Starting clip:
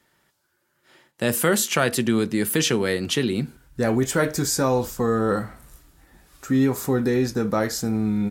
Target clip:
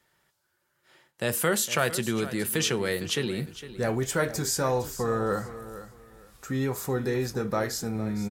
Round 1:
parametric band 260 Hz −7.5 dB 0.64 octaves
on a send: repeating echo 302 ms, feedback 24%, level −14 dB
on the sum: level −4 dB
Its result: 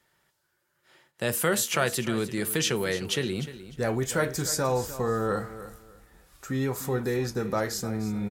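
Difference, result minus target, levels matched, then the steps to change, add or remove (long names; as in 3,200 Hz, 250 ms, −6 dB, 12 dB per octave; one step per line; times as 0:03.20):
echo 156 ms early
change: repeating echo 458 ms, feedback 24%, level −14 dB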